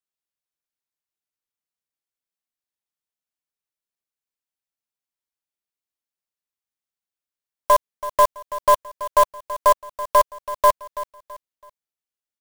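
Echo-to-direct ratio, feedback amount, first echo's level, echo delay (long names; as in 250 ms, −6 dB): −14.0 dB, 34%, −14.5 dB, 330 ms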